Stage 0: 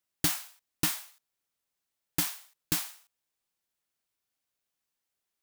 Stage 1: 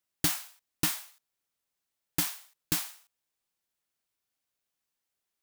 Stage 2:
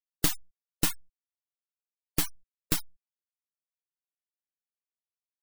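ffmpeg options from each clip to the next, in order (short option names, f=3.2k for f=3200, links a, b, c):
-af anull
-af "aeval=exprs='max(val(0),0)':c=same,afftfilt=real='re*gte(hypot(re,im),0.0141)':imag='im*gte(hypot(re,im),0.0141)':win_size=1024:overlap=0.75,volume=5.5dB"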